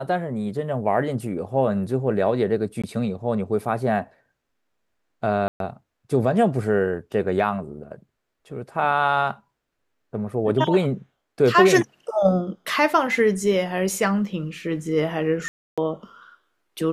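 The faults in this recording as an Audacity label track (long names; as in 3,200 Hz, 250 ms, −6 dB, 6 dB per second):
2.820000	2.840000	drop-out 16 ms
5.480000	5.600000	drop-out 122 ms
15.480000	15.780000	drop-out 296 ms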